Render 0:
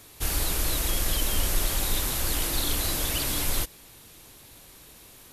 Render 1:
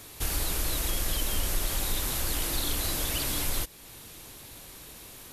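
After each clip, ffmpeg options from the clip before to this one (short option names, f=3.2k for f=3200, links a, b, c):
-af "acompressor=threshold=-40dB:ratio=1.5,volume=3.5dB"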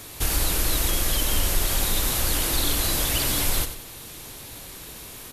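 -af "aecho=1:1:93|186|279|372|465:0.299|0.131|0.0578|0.0254|0.0112,volume=6dB"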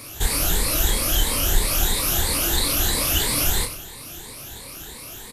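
-filter_complex "[0:a]afftfilt=real='re*pow(10,11/40*sin(2*PI*(0.95*log(max(b,1)*sr/1024/100)/log(2)-(3)*(pts-256)/sr)))':imag='im*pow(10,11/40*sin(2*PI*(0.95*log(max(b,1)*sr/1024/100)/log(2)-(3)*(pts-256)/sr)))':win_size=1024:overlap=0.75,asplit=2[a][b];[b]adelay=29,volume=-5.5dB[c];[a][c]amix=inputs=2:normalize=0"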